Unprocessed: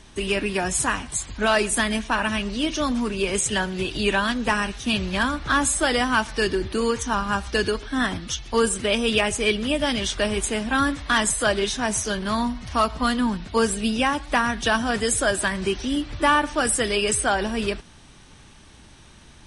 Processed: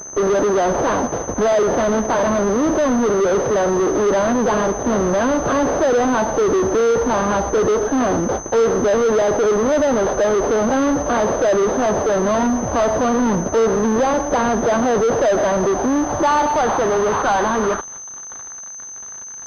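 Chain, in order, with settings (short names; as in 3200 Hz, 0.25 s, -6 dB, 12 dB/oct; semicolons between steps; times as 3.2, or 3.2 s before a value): median filter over 15 samples; band-pass sweep 530 Hz -> 1500 Hz, 15–18.57; in parallel at -3 dB: fuzz box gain 51 dB, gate -59 dBFS; on the sum: bell 2400 Hz -11.5 dB 0.64 oct; pulse-width modulation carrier 6200 Hz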